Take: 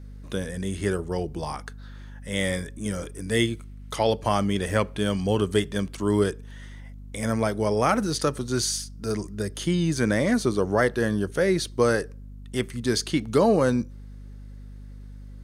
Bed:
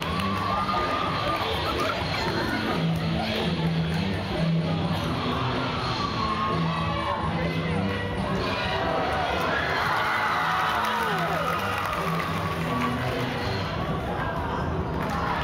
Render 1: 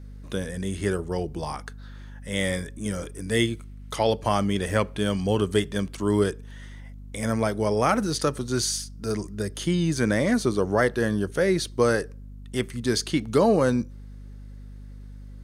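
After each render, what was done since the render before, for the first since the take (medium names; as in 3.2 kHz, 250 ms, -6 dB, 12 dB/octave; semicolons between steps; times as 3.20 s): no audible change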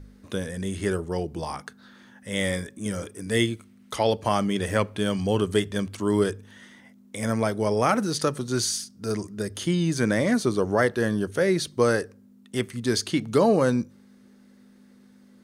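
de-hum 50 Hz, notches 3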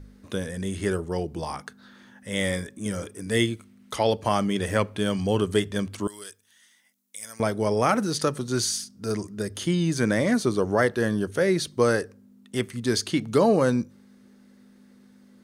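6.07–7.40 s: pre-emphasis filter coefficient 0.97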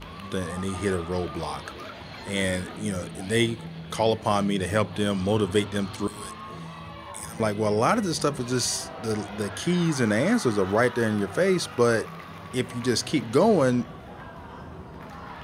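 add bed -13.5 dB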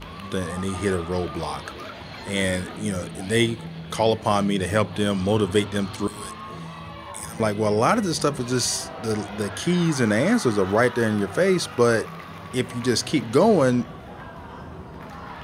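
trim +2.5 dB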